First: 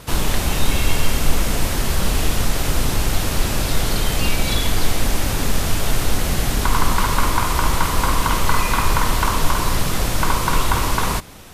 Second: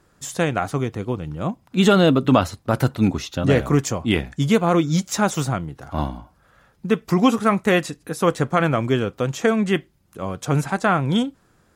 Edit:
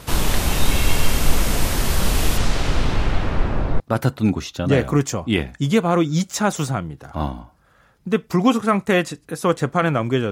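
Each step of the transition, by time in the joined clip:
first
2.37–3.8 LPF 7400 Hz -> 1000 Hz
3.8 switch to second from 2.58 s

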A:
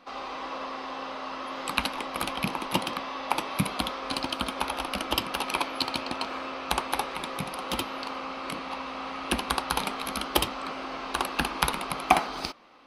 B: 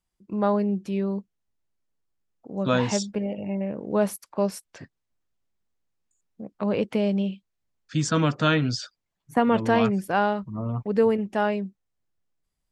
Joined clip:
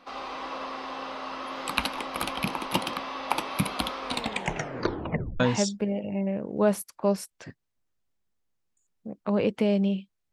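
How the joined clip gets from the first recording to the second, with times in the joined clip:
A
4.05 tape stop 1.35 s
5.4 switch to B from 2.74 s

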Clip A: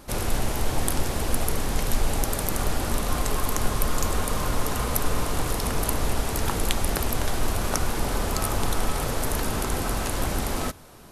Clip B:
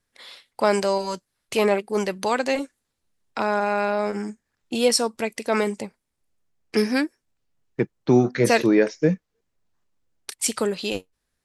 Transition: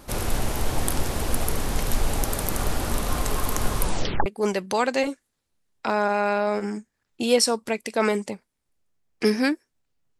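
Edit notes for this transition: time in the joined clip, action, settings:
clip A
3.8 tape stop 0.46 s
4.26 switch to clip B from 1.78 s

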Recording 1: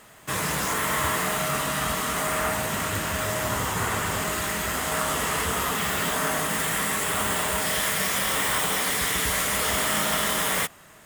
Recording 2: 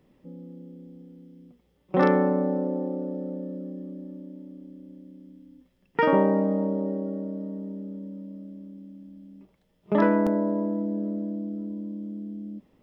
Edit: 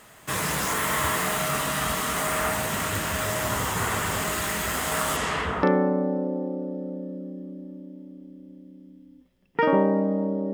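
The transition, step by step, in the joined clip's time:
recording 1
5.16–5.63 LPF 9500 Hz -> 1300 Hz
5.63 switch to recording 2 from 2.03 s

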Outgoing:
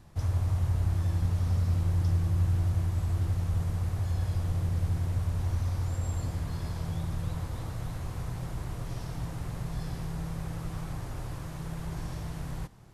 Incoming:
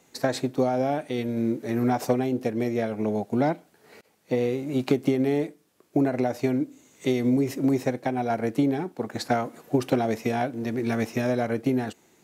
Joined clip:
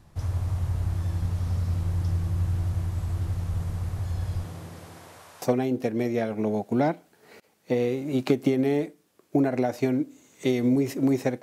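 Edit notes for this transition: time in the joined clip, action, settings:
outgoing
4.43–5.42 HPF 140 Hz -> 820 Hz
5.42 switch to incoming from 2.03 s

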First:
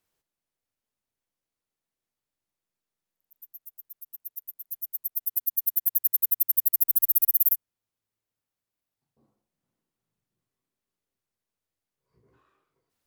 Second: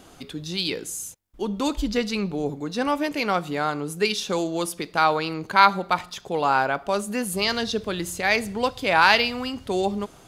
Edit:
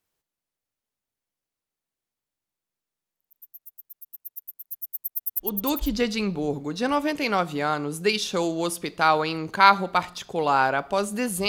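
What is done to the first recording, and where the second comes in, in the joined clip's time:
first
5.57 switch to second from 1.53 s, crossfade 0.76 s equal-power

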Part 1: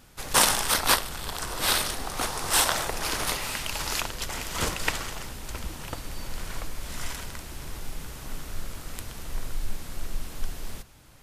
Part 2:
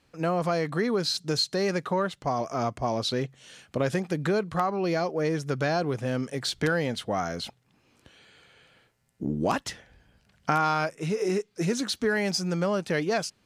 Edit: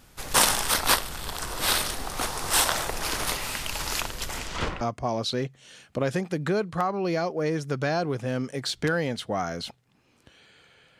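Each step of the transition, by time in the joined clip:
part 1
4.39–4.81 LPF 11000 Hz -> 1600 Hz
4.81 switch to part 2 from 2.6 s

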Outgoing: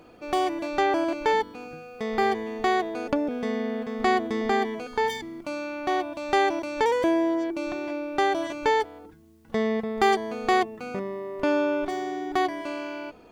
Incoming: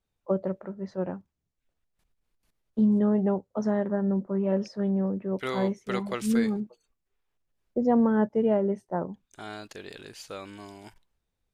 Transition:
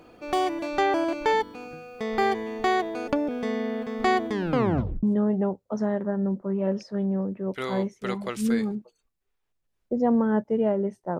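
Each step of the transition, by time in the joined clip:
outgoing
4.3 tape stop 0.73 s
5.03 switch to incoming from 2.88 s

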